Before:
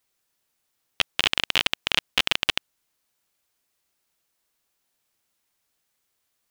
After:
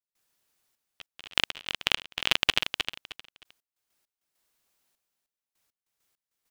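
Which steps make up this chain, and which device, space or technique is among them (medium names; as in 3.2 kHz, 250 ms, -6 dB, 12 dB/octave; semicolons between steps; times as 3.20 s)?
trance gate with a delay (trance gate ".xxxx....x..x." 100 bpm -24 dB; feedback delay 310 ms, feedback 24%, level -7.5 dB)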